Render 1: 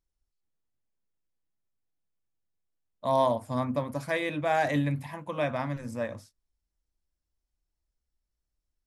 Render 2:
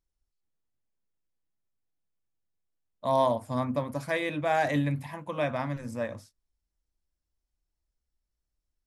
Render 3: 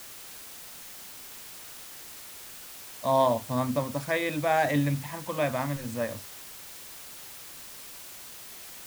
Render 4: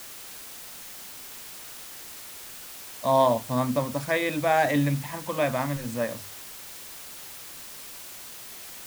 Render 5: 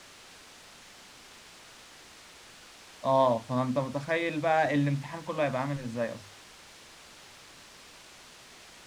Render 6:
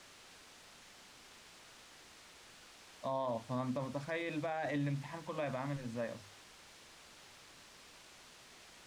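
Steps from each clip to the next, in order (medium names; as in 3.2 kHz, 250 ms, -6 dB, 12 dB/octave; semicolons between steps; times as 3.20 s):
no audible change
added noise white -46 dBFS; trim +1.5 dB
hum notches 50/100/150 Hz; trim +2.5 dB
distance through air 83 m; trim -3 dB
peak limiter -22.5 dBFS, peak gain reduction 9 dB; trim -6.5 dB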